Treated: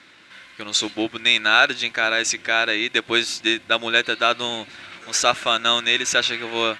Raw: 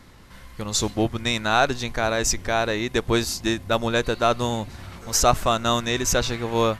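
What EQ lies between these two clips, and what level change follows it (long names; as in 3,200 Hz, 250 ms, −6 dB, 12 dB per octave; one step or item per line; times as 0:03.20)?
loudspeaker in its box 180–8,700 Hz, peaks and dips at 320 Hz +9 dB, 610 Hz +5 dB, 1,500 Hz +9 dB, 2,500 Hz +4 dB, 3,700 Hz +7 dB
parametric band 2,400 Hz +12.5 dB 1.6 octaves
high-shelf EQ 6,900 Hz +10 dB
−8.0 dB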